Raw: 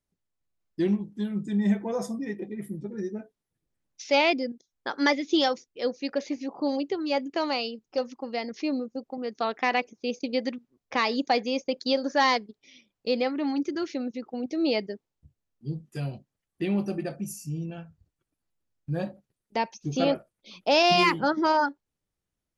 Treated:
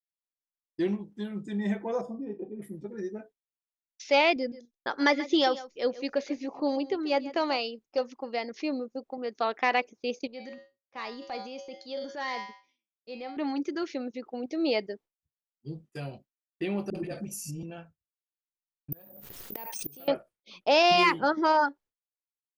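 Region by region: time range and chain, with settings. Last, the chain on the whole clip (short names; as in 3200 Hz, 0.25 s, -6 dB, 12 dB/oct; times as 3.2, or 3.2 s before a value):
2.01–2.62 running mean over 22 samples + doubler 37 ms -12.5 dB
4.36–7.57 low shelf 120 Hz +11 dB + echo 0.135 s -16.5 dB
10.27–13.37 bell 180 Hz +6 dB 0.74 oct + resonator 110 Hz, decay 0.56 s, harmonics odd, mix 80% + transient shaper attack -4 dB, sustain +7 dB
16.9–17.63 bell 1000 Hz -10 dB 1.6 oct + transient shaper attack +3 dB, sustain +10 dB + dispersion highs, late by 48 ms, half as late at 370 Hz
18.92–20.08 flipped gate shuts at -23 dBFS, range -26 dB + careless resampling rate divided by 3×, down none, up zero stuff + backwards sustainer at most 30 dB/s
whole clip: tone controls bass -12 dB, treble -4 dB; expander -48 dBFS; low shelf 98 Hz +9.5 dB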